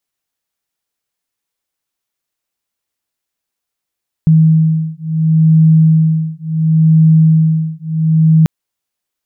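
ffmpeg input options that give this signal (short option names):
-f lavfi -i "aevalsrc='0.316*(sin(2*PI*159*t)+sin(2*PI*159.71*t))':d=4.19:s=44100"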